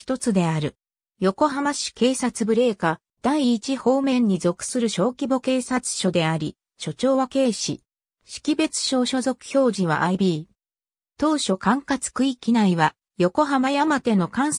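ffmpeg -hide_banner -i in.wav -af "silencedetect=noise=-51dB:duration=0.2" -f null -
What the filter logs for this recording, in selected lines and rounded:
silence_start: 0.72
silence_end: 1.20 | silence_duration: 0.48
silence_start: 2.97
silence_end: 3.23 | silence_duration: 0.26
silence_start: 6.52
silence_end: 6.79 | silence_duration: 0.27
silence_start: 7.79
silence_end: 8.21 | silence_duration: 0.42
silence_start: 10.51
silence_end: 11.19 | silence_duration: 0.67
silence_start: 12.91
silence_end: 13.18 | silence_duration: 0.27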